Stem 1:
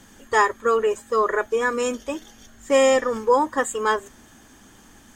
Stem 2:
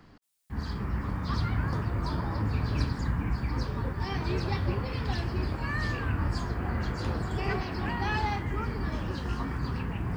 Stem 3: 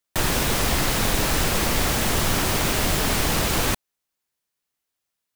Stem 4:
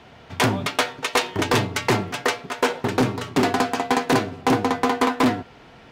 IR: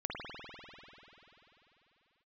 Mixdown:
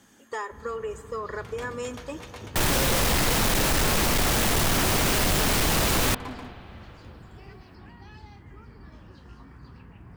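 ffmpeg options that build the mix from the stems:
-filter_complex "[0:a]acompressor=threshold=-22dB:ratio=6,highpass=130,volume=-8dB,asplit=3[link_01][link_02][link_03];[link_02]volume=-17.5dB[link_04];[1:a]acrossover=split=380|3000[link_05][link_06][link_07];[link_06]acompressor=threshold=-36dB:ratio=6[link_08];[link_05][link_08][link_07]amix=inputs=3:normalize=0,volume=-15dB[link_09];[2:a]adelay=2400,volume=2.5dB,asplit=2[link_10][link_11];[link_11]volume=-23.5dB[link_12];[3:a]acompressor=threshold=-32dB:ratio=2.5,adelay=1050,volume=-10dB,asplit=2[link_13][link_14];[link_14]volume=-4.5dB[link_15];[link_03]apad=whole_len=307026[link_16];[link_13][link_16]sidechaincompress=threshold=-48dB:ratio=3:attack=16:release=433[link_17];[4:a]atrim=start_sample=2205[link_18];[link_04][link_12]amix=inputs=2:normalize=0[link_19];[link_19][link_18]afir=irnorm=-1:irlink=0[link_20];[link_15]aecho=0:1:137:1[link_21];[link_01][link_09][link_10][link_17][link_20][link_21]amix=inputs=6:normalize=0,asoftclip=type=tanh:threshold=-18dB"

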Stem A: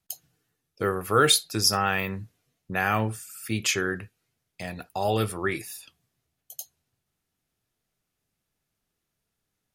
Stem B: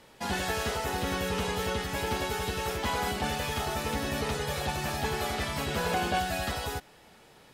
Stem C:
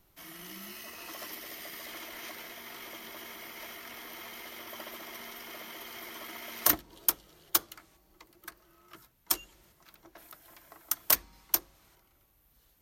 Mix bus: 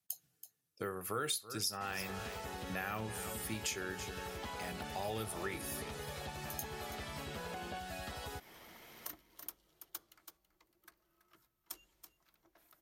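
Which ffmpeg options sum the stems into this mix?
ffmpeg -i stem1.wav -i stem2.wav -i stem3.wav -filter_complex "[0:a]highpass=93,highshelf=frequency=5600:gain=8.5,volume=-9.5dB,asplit=2[link_01][link_02];[link_02]volume=-15dB[link_03];[1:a]adelay=1600,volume=-4.5dB[link_04];[2:a]adelay=2400,volume=-15dB,asplit=2[link_05][link_06];[link_06]volume=-14.5dB[link_07];[link_04][link_05]amix=inputs=2:normalize=0,acompressor=threshold=-41dB:ratio=6,volume=0dB[link_08];[link_03][link_07]amix=inputs=2:normalize=0,aecho=0:1:329:1[link_09];[link_01][link_08][link_09]amix=inputs=3:normalize=0,acompressor=threshold=-37dB:ratio=3" out.wav

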